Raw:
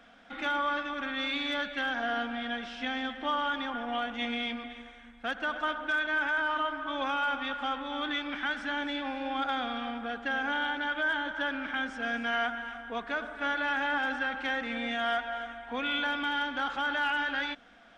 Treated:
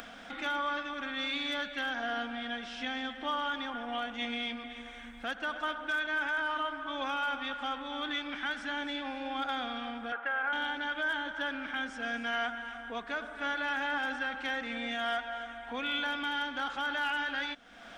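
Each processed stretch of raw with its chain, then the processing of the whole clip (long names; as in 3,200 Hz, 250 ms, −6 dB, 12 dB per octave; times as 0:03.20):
0:10.12–0:10.53: loudspeaker in its box 480–2,800 Hz, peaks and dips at 550 Hz +6 dB, 960 Hz +8 dB, 1,400 Hz +10 dB, 2,100 Hz +4 dB + downward compressor, threshold −25 dBFS
whole clip: upward compression, threshold −34 dBFS; high-shelf EQ 5,200 Hz +8.5 dB; level −3.5 dB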